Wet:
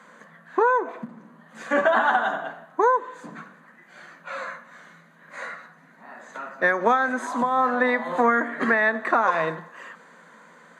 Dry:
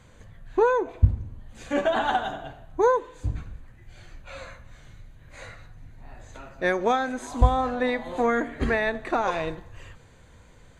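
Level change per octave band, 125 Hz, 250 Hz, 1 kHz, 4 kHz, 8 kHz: −17.0, +1.0, +4.5, −2.5, −1.5 decibels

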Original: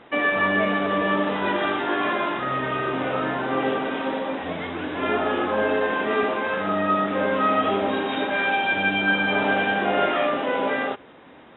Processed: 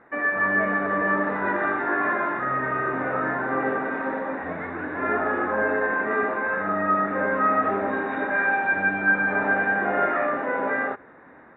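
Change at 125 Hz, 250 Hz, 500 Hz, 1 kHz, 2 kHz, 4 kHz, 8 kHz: −3.0 dB, −3.0 dB, −2.5 dB, −0.5 dB, +1.5 dB, below −20 dB, can't be measured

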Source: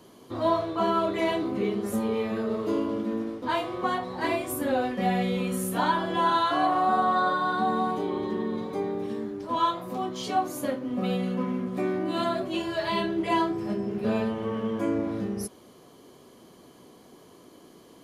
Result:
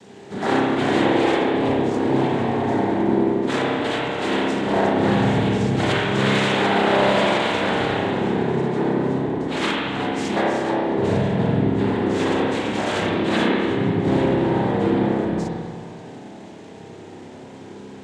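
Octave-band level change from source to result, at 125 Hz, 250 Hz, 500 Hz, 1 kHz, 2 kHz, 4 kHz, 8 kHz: +12.5, +8.0, +8.0, +2.5, +10.0, +9.0, +3.0 decibels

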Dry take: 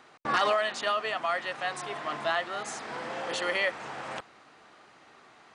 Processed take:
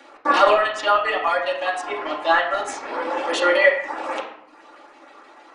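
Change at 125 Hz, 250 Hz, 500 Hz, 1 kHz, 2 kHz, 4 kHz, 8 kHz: can't be measured, +10.5 dB, +11.5 dB, +10.5 dB, +9.5 dB, +6.0 dB, +4.0 dB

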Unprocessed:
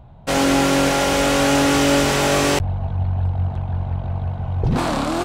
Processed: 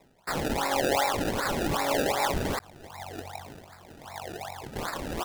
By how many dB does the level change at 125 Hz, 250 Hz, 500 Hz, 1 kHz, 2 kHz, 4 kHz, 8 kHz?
−18.0, −14.5, −10.0, −7.5, −10.0, −11.5, −12.0 decibels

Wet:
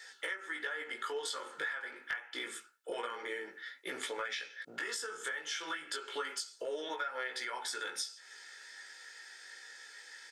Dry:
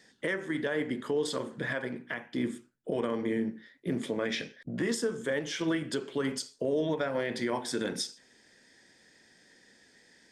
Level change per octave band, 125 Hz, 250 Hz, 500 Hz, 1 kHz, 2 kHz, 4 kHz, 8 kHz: below −30 dB, −21.0 dB, −11.0 dB, −0.5 dB, −1.0 dB, −1.0 dB, −1.5 dB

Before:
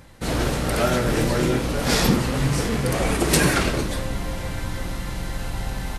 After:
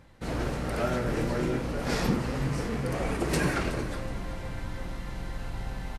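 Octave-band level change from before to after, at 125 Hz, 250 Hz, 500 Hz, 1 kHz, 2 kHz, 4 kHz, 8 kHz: −7.5, −7.5, −7.5, −7.5, −8.5, −13.0, −14.5 decibels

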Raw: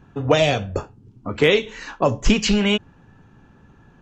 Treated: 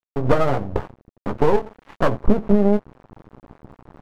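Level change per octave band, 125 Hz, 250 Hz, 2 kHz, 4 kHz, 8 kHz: +0.5 dB, +1.0 dB, −9.0 dB, −18.5 dB, can't be measured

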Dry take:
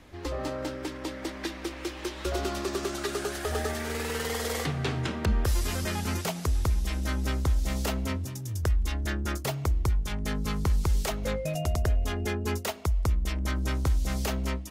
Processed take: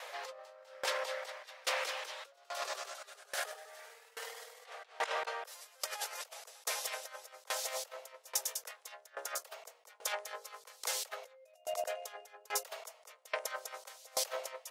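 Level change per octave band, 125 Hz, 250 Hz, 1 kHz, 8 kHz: below −40 dB, below −35 dB, −5.0 dB, −2.0 dB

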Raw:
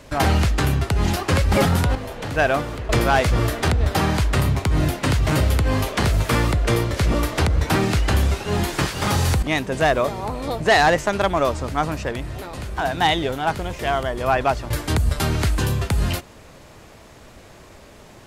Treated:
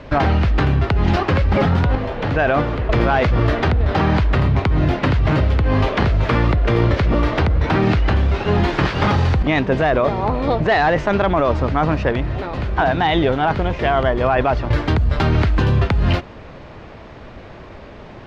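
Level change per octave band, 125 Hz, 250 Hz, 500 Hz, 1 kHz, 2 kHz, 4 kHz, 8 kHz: +4.0 dB, +4.5 dB, +3.5 dB, +2.5 dB, +1.5 dB, −2.0 dB, below −15 dB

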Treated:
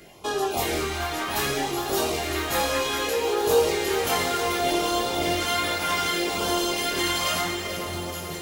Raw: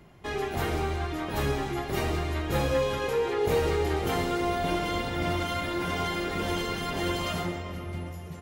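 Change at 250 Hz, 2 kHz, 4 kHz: +1.5, +6.0, +9.5 decibels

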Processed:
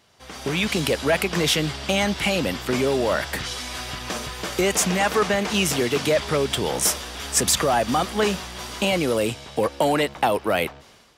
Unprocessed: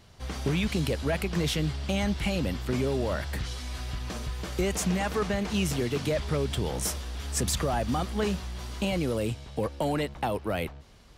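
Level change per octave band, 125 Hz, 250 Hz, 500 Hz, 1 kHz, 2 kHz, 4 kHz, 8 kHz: −0.5, +4.0, +8.0, +9.5, +10.5, +10.5, +10.5 decibels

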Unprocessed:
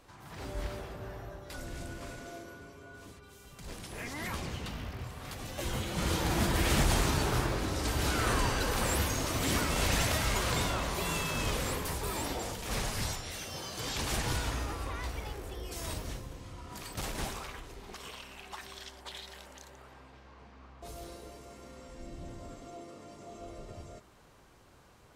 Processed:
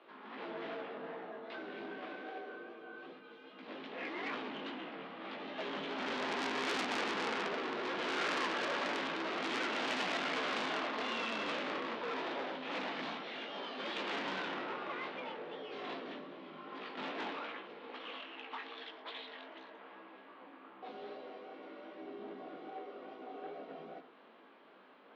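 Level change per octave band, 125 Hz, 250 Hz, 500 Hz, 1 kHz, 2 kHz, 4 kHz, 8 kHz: −25.0, −5.5, −2.5, −2.0, −1.5, −4.5, −19.5 decibels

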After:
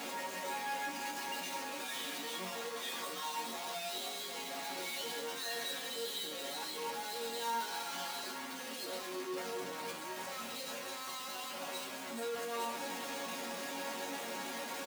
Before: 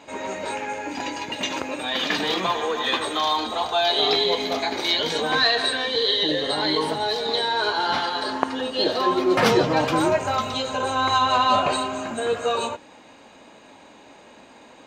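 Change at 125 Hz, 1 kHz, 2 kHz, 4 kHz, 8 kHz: −24.0, −17.5, −15.0, −17.5, −5.5 decibels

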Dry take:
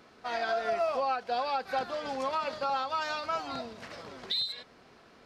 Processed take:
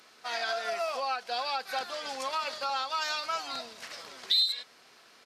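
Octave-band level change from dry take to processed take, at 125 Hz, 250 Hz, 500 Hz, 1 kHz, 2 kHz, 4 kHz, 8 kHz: below −10 dB, −9.0 dB, −4.5 dB, −2.0 dB, +2.0 dB, +6.5 dB, +9.5 dB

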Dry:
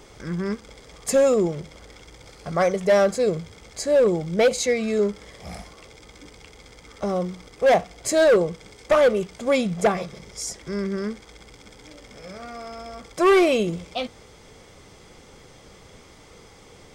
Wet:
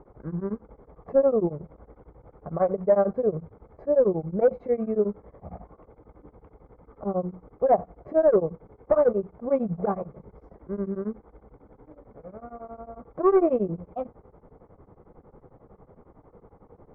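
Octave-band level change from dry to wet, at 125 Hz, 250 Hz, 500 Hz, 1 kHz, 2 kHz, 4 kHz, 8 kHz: −3.0 dB, −3.5 dB, −3.0 dB, −4.0 dB, −19.0 dB, below −40 dB, below −40 dB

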